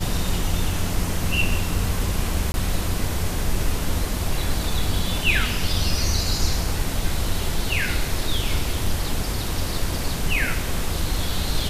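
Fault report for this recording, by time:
0:02.52–0:02.54: drop-out 21 ms

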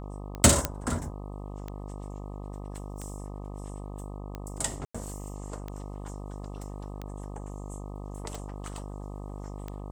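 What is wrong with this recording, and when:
mains buzz 50 Hz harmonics 25 −39 dBFS
scratch tick 45 rpm −23 dBFS
0:00.65: click −8 dBFS
0:04.85–0:04.95: drop-out 95 ms

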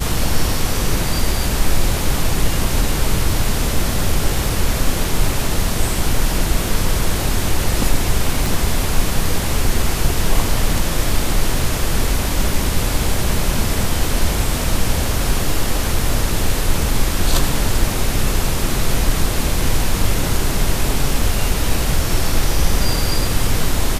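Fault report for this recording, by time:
0:08.46: click

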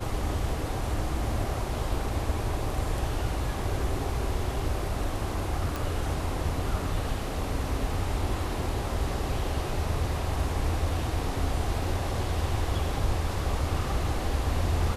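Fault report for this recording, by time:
0:05.76: click

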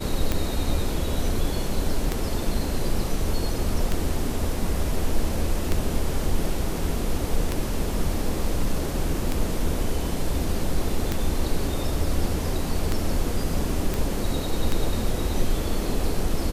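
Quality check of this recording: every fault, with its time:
scratch tick 33 1/3 rpm −9 dBFS
0:13.94: click

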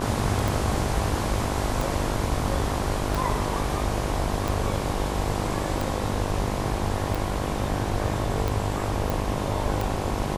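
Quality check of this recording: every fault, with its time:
mains buzz 50 Hz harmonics 22 −30 dBFS
scratch tick 45 rpm
0:09.10: click

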